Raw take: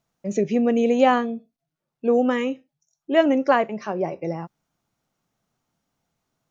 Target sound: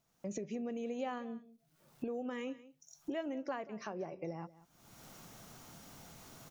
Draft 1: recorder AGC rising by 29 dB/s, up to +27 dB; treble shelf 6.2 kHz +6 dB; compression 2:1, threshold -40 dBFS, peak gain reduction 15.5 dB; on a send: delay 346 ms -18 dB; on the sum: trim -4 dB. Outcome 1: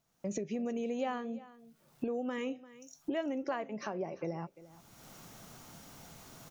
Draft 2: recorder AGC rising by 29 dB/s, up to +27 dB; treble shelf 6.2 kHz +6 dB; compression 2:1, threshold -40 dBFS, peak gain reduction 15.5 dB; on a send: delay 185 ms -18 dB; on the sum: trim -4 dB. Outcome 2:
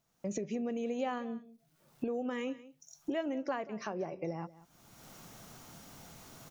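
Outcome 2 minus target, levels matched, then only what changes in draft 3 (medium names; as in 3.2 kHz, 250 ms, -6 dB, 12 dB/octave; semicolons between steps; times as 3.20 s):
compression: peak gain reduction -4 dB
change: compression 2:1, threshold -48 dBFS, peak gain reduction 19.5 dB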